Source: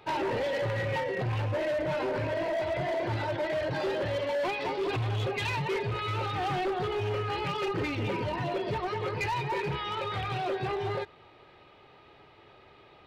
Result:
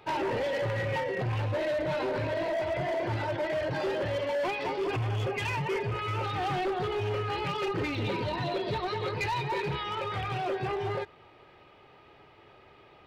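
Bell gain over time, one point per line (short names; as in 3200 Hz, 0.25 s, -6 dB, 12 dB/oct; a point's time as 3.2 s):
bell 3900 Hz 0.23 oct
-2.5 dB
from 1.42 s +4.5 dB
from 2.53 s -4 dB
from 4.84 s -12 dB
from 6.24 s -0.5 dB
from 7.95 s +11.5 dB
from 9.12 s +5 dB
from 9.83 s -6 dB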